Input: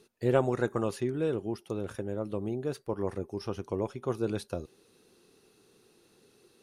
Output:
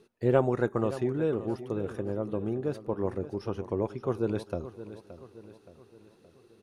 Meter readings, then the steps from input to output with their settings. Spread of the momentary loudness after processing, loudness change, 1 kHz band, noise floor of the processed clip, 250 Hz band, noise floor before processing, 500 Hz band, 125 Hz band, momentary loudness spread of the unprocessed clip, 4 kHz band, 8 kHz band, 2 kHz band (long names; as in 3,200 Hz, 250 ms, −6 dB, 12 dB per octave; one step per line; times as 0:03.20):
19 LU, +2.0 dB, +1.5 dB, −61 dBFS, +2.0 dB, −65 dBFS, +2.0 dB, +2.0 dB, 10 LU, −4.5 dB, can't be measured, 0.0 dB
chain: high-shelf EQ 3,200 Hz −11 dB
repeating echo 572 ms, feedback 48%, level −14 dB
level +2 dB